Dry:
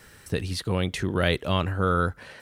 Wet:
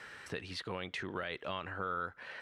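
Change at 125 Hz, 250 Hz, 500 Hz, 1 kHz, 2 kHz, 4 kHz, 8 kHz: -21.5, -17.5, -14.5, -10.5, -9.0, -12.0, -15.5 dB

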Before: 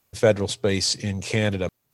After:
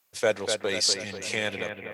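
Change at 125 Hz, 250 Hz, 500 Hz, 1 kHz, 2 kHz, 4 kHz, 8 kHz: -17.5, -11.0, -5.5, -2.5, 0.0, 0.0, 0.0 dB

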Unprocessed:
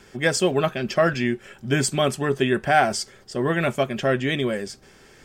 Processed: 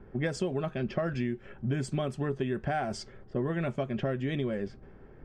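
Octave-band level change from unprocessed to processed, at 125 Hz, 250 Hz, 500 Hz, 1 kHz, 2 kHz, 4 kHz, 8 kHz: -4.5, -7.0, -10.5, -13.5, -15.0, -16.0, -19.0 dB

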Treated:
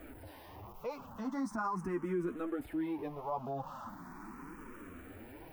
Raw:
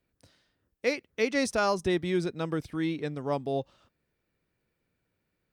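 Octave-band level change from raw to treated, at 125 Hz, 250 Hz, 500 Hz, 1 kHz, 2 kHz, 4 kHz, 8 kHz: -9.0 dB, -5.5 dB, -10.5 dB, -4.5 dB, -13.5 dB, under -20 dB, under -15 dB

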